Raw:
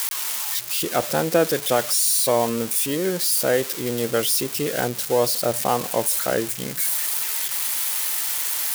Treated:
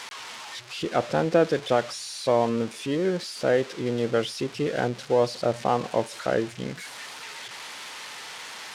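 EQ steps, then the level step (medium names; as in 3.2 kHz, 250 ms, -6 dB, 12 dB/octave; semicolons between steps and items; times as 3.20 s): tape spacing loss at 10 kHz 34 dB; treble shelf 3.1 kHz +10 dB; 0.0 dB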